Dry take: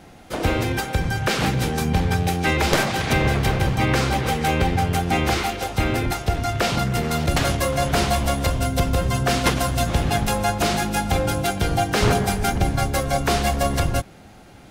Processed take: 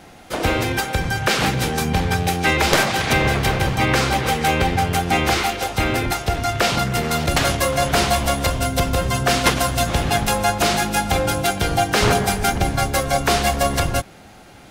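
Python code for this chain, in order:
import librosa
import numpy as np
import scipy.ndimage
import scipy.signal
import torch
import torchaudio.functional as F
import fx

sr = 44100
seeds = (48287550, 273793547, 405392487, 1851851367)

y = fx.low_shelf(x, sr, hz=420.0, db=-5.5)
y = y * 10.0 ** (4.5 / 20.0)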